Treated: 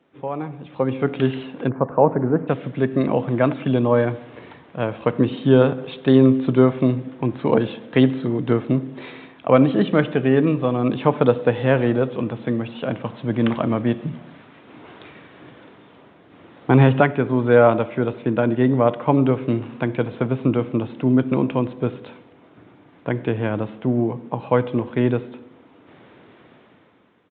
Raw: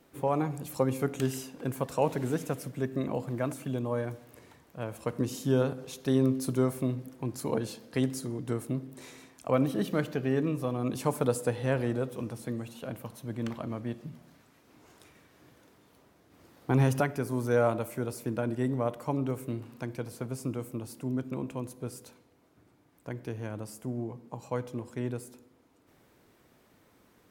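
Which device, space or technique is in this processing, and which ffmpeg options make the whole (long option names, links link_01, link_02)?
Bluetooth headset: -filter_complex "[0:a]asplit=3[link_01][link_02][link_03];[link_01]afade=type=out:start_time=1.68:duration=0.02[link_04];[link_02]lowpass=frequency=1400:width=0.5412,lowpass=frequency=1400:width=1.3066,afade=type=in:start_time=1.68:duration=0.02,afade=type=out:start_time=2.47:duration=0.02[link_05];[link_03]afade=type=in:start_time=2.47:duration=0.02[link_06];[link_04][link_05][link_06]amix=inputs=3:normalize=0,highpass=120,dynaudnorm=framelen=390:gausssize=5:maxgain=16dB,aresample=8000,aresample=44100" -ar 16000 -c:a sbc -b:a 64k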